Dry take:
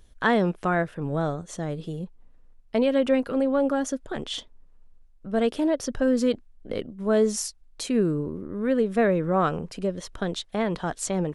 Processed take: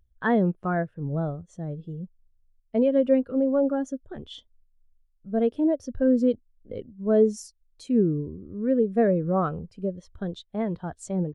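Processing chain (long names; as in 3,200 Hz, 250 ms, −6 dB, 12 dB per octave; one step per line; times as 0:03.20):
parametric band 83 Hz +10 dB 1 octave
every bin expanded away from the loudest bin 1.5 to 1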